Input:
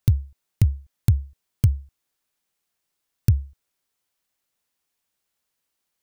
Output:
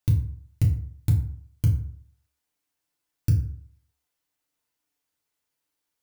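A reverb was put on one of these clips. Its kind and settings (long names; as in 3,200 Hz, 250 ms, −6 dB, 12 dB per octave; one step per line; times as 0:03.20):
feedback delay network reverb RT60 0.56 s, low-frequency decay 1×, high-frequency decay 0.6×, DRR −2 dB
level −6.5 dB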